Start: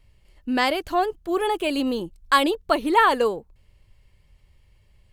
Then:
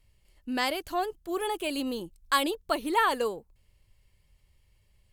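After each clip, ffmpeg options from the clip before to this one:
-af "aemphasis=mode=production:type=cd,volume=0.422"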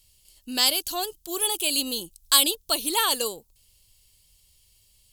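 -af "aexciter=amount=7.6:drive=4.4:freq=2900,volume=0.794"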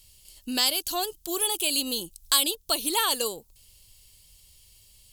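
-af "acompressor=threshold=0.0126:ratio=1.5,volume=1.78"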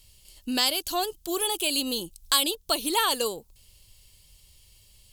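-af "highshelf=f=4200:g=-6,volume=1.33"

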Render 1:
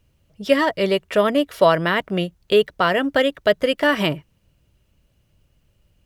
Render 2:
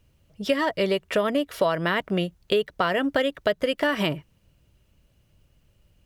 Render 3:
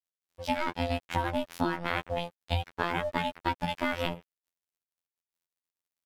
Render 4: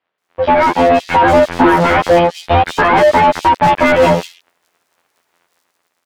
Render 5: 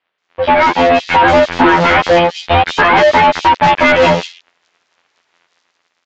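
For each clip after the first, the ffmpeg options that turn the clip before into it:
-af "acompressor=threshold=0.1:ratio=4"
-af "aeval=exprs='val(0)*sin(2*PI*320*n/s)':c=same,afftfilt=real='hypot(re,im)*cos(PI*b)':imag='0':win_size=2048:overlap=0.75,aeval=exprs='sgn(val(0))*max(abs(val(0))-0.00266,0)':c=same"
-filter_complex "[0:a]dynaudnorm=f=300:g=7:m=5.01,asplit=2[s0][s1];[s1]highpass=f=720:p=1,volume=79.4,asoftclip=type=tanh:threshold=0.891[s2];[s0][s2]amix=inputs=2:normalize=0,lowpass=f=1000:p=1,volume=0.501,acrossover=split=3600[s3][s4];[s4]adelay=180[s5];[s3][s5]amix=inputs=2:normalize=0,volume=1.26"
-filter_complex "[0:a]acrossover=split=4000[s0][s1];[s0]crystalizer=i=5.5:c=0[s2];[s2][s1]amix=inputs=2:normalize=0,aresample=16000,aresample=44100,volume=0.891"

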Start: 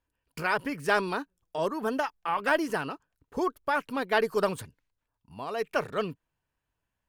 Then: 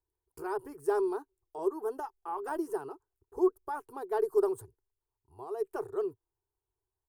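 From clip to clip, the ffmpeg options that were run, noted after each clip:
-af "firequalizer=gain_entry='entry(110,0);entry(200,-27);entry(380,13);entry(550,-12);entry(780,1);entry(2200,-24);entry(8700,0)':delay=0.05:min_phase=1,volume=0.531"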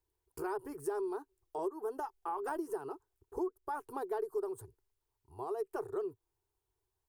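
-af "acompressor=threshold=0.0126:ratio=5,volume=1.5"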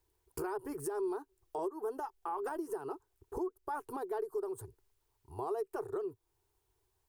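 -af "alimiter=level_in=3.76:limit=0.0631:level=0:latency=1:release=420,volume=0.266,volume=2.24"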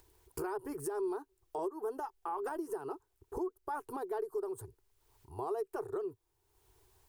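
-af "acompressor=mode=upward:threshold=0.00178:ratio=2.5"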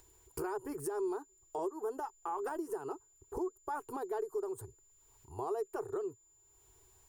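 -af "aeval=exprs='val(0)+0.000562*sin(2*PI*7100*n/s)':c=same"

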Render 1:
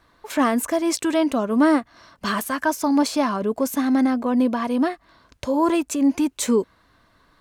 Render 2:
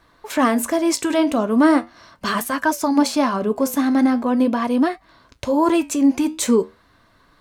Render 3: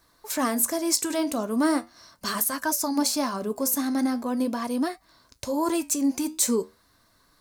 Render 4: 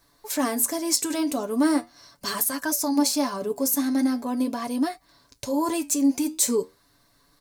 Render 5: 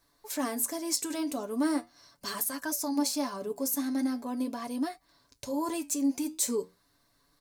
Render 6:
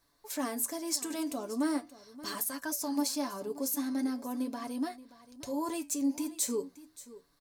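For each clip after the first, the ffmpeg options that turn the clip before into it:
-af "flanger=delay=5.8:depth=9.2:regen=-73:speed=0.4:shape=triangular,volume=2.24"
-af "aexciter=amount=2.6:drive=8.4:freq=4300,volume=0.376"
-af "equalizer=f=1300:w=2.1:g=-4,aecho=1:1:7:0.51"
-af "bandreject=f=60:t=h:w=6,bandreject=f=120:t=h:w=6,bandreject=f=180:t=h:w=6,volume=0.447"
-af "aecho=1:1:577:0.133,volume=0.75"

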